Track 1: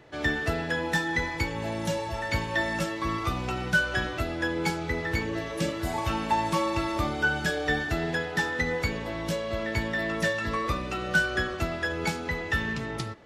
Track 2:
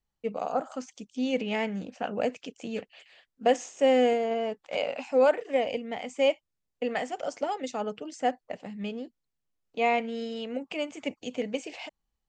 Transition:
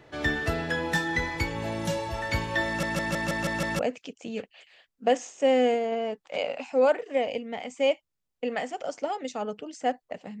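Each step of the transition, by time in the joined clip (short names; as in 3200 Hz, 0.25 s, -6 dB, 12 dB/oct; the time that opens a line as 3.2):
track 1
2.67 stutter in place 0.16 s, 7 plays
3.79 switch to track 2 from 2.18 s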